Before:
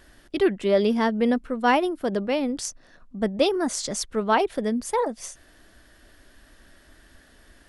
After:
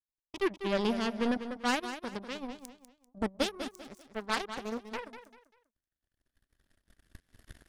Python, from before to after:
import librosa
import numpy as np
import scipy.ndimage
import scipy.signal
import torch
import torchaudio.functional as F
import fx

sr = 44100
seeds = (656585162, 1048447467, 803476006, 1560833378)

y = fx.recorder_agc(x, sr, target_db=-17.0, rise_db_per_s=7.1, max_gain_db=30)
y = fx.bass_treble(y, sr, bass_db=10, treble_db=-6)
y = fx.power_curve(y, sr, exponent=3.0)
y = 10.0 ** (-19.5 / 20.0) * np.tanh(y / 10.0 ** (-19.5 / 20.0))
y = fx.high_shelf(y, sr, hz=3700.0, db=11.5)
y = fx.echo_feedback(y, sr, ms=196, feedback_pct=32, wet_db=-10.5)
y = fx.doppler_dist(y, sr, depth_ms=0.59, at=(3.77, 5.02))